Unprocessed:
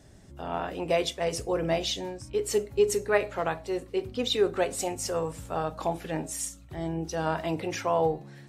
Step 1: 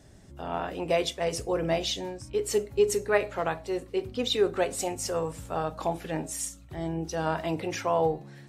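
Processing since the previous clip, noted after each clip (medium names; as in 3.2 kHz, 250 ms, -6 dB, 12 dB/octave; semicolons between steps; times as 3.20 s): no audible change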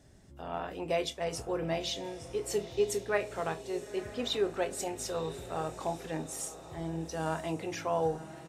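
doubling 25 ms -13.5 dB; echo that smears into a reverb 937 ms, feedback 46%, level -13.5 dB; trim -5.5 dB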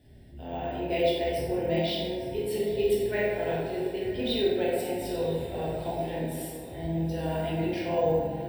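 static phaser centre 2.9 kHz, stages 4; plate-style reverb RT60 1.7 s, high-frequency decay 0.45×, DRR -6.5 dB; careless resampling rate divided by 2×, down none, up hold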